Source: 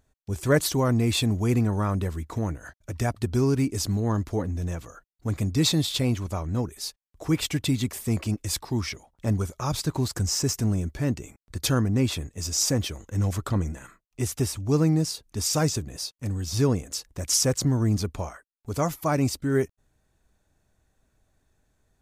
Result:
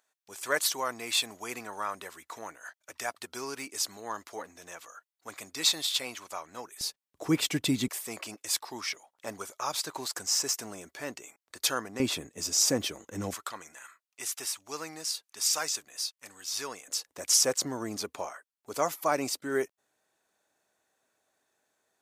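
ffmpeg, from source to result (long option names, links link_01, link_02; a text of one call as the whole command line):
ffmpeg -i in.wav -af "asetnsamples=nb_out_samples=441:pad=0,asendcmd='6.81 highpass f 220;7.88 highpass f 660;12 highpass f 270;13.34 highpass f 1100;16.88 highpass f 470',highpass=880" out.wav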